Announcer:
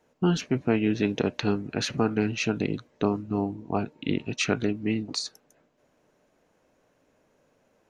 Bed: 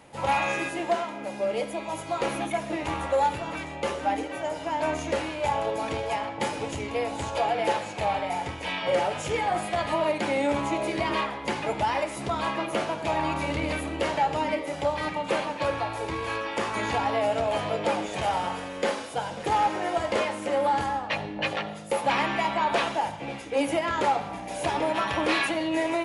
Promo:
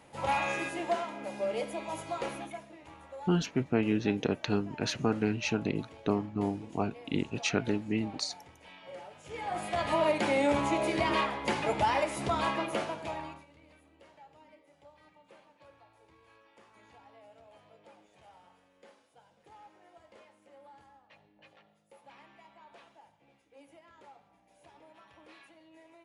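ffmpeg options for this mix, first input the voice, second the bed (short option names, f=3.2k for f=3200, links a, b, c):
-filter_complex "[0:a]adelay=3050,volume=-4dB[a];[1:a]volume=15dB,afade=t=out:st=1.99:d=0.73:silence=0.149624,afade=t=in:st=9.23:d=0.77:silence=0.1,afade=t=out:st=12.41:d=1.04:silence=0.0334965[b];[a][b]amix=inputs=2:normalize=0"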